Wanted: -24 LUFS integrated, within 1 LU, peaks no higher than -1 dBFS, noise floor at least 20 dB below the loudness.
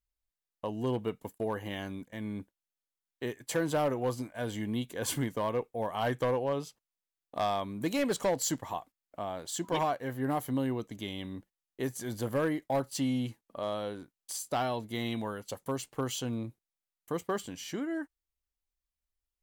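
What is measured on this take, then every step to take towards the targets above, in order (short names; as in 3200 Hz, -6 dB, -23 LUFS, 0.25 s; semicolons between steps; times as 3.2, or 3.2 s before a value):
clipped 0.5%; flat tops at -23.0 dBFS; loudness -34.0 LUFS; peak -23.0 dBFS; loudness target -24.0 LUFS
-> clip repair -23 dBFS; gain +10 dB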